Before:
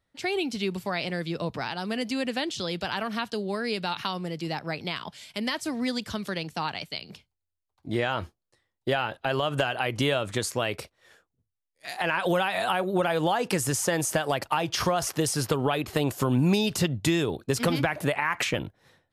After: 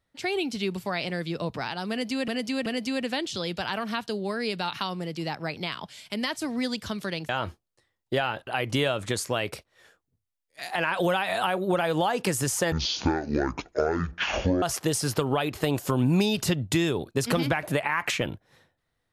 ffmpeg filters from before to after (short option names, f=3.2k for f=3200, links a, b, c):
-filter_complex "[0:a]asplit=7[a][b][c][d][e][f][g];[a]atrim=end=2.282[h];[b]atrim=start=1.898:end=2.282[i];[c]atrim=start=1.898:end=6.532[j];[d]atrim=start=8.038:end=9.222[k];[e]atrim=start=9.728:end=13.984[l];[f]atrim=start=13.98:end=14.95,asetpts=PTS-STARTPTS,asetrate=22491,aresample=44100,atrim=end_sample=83876,asetpts=PTS-STARTPTS[m];[g]atrim=start=14.946[n];[h][i]acrossfade=d=0.004:c1=hsin:c2=hsin[o];[o][j]acrossfade=d=0.004:c1=hsin:c2=hsin[p];[p][k]acrossfade=d=0.004:c1=hsin:c2=hsin[q];[q][l]acrossfade=d=0.004:c1=hsin:c2=hsin[r];[r][m]acrossfade=d=0.004:c1=hsin:c2=hsin[s];[s][n]acrossfade=d=0.004:c1=hsin:c2=hsin"